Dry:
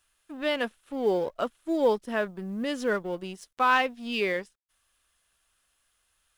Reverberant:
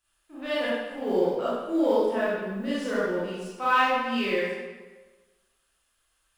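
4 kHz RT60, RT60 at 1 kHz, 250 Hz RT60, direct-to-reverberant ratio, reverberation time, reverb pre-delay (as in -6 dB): 1.0 s, 1.3 s, 1.3 s, -10.0 dB, 1.3 s, 26 ms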